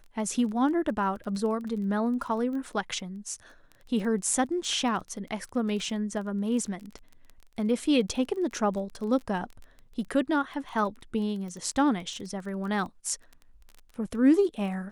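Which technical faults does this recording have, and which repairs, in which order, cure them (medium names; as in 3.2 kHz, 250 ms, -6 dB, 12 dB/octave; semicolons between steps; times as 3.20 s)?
crackle 20 per s -36 dBFS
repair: de-click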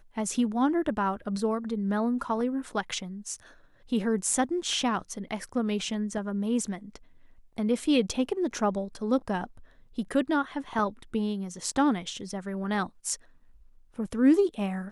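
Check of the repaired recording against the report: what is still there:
nothing left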